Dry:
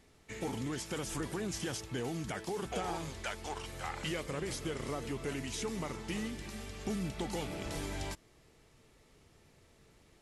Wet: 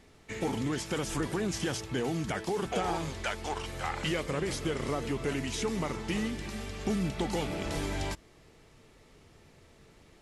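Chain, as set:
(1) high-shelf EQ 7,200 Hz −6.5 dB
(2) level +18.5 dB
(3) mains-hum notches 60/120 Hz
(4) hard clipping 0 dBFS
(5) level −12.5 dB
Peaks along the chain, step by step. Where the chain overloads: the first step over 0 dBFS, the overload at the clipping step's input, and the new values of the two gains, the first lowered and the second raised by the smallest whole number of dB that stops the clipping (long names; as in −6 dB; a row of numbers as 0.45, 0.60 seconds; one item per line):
−24.0, −5.5, −5.5, −5.5, −18.0 dBFS
no step passes full scale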